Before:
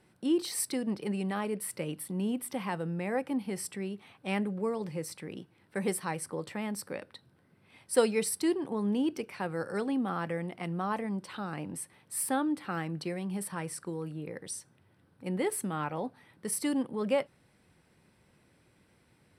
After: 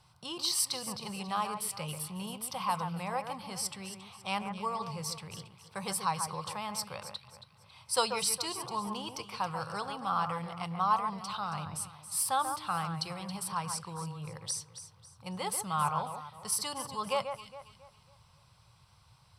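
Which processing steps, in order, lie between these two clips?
FFT filter 130 Hz 0 dB, 280 Hz -28 dB, 1.1 kHz +4 dB, 1.8 kHz -15 dB, 2.8 kHz -3 dB, 4.9 kHz +4 dB, 9.1 kHz -5 dB; echo whose repeats swap between lows and highs 137 ms, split 2.3 kHz, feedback 58%, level -7 dB; trim +6.5 dB

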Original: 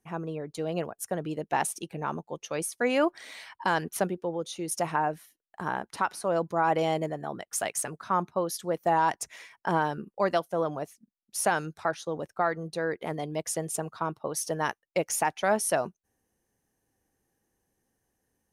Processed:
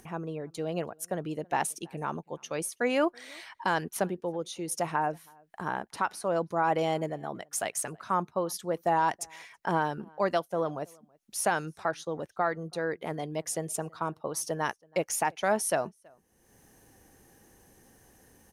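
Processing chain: upward compressor, threshold -40 dBFS; echo from a far wall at 56 m, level -28 dB; trim -1.5 dB

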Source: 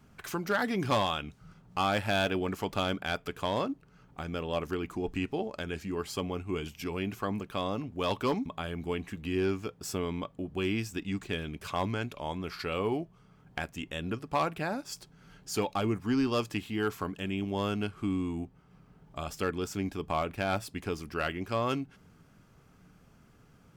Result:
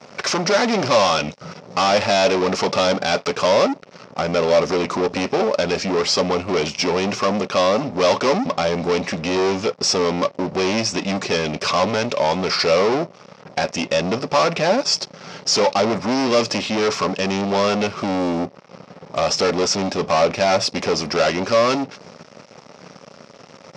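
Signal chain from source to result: waveshaping leveller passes 5; cabinet simulation 230–5900 Hz, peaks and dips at 310 Hz -7 dB, 560 Hz +7 dB, 1.6 kHz -6 dB, 3.2 kHz -4 dB, 5.4 kHz +9 dB; trim +6 dB

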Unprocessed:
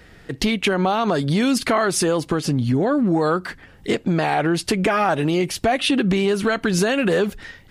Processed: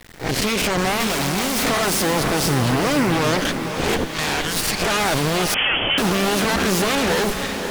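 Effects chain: reverse spectral sustain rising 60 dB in 0.38 s; 4.04–4.82 s: Bessel high-pass 1.8 kHz, order 2; peak limiter -14.5 dBFS, peak gain reduction 10.5 dB; 1.00–1.65 s: companded quantiser 2-bit; Chebyshev shaper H 4 -10 dB, 8 -9 dB, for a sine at -14.5 dBFS; bit crusher 7-bit; on a send: echo that smears into a reverb 515 ms, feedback 48%, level -7 dB; 5.54–5.98 s: on the sum: frequency inversion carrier 3.3 kHz

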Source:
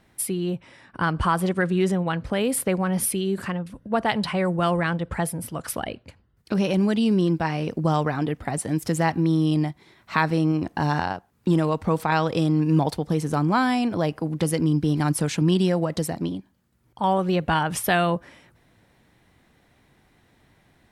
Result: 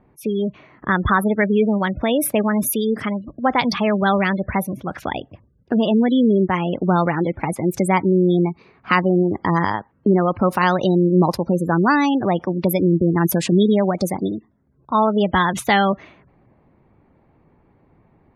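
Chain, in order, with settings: spectral gate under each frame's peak -25 dB strong; level-controlled noise filter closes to 860 Hz, open at -19.5 dBFS; tape speed +14%; trim +5 dB

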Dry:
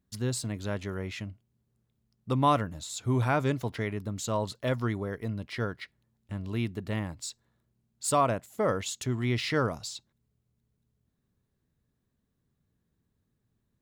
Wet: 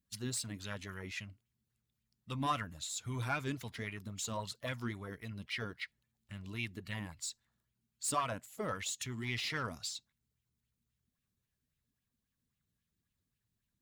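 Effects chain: coarse spectral quantiser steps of 15 dB; amplifier tone stack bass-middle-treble 5-5-5; saturation -34.5 dBFS, distortion -17 dB; sweeping bell 3.7 Hz 240–2900 Hz +9 dB; trim +5 dB

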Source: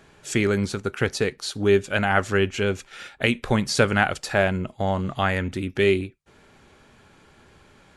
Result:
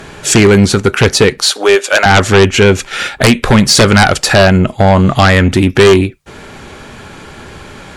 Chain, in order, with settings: 1.42–2.06 s: high-pass 490 Hz 24 dB/octave; in parallel at 0 dB: compression, threshold -30 dBFS, peak gain reduction 16 dB; on the sum: sine folder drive 11 dB, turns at -2.5 dBFS; trim +1 dB

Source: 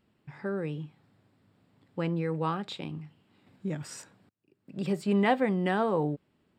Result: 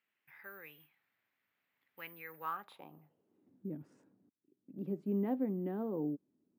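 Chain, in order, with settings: careless resampling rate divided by 3×, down none, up zero stuff; band-pass sweep 2.1 kHz -> 280 Hz, 2.24–3.54 s; trim -2.5 dB

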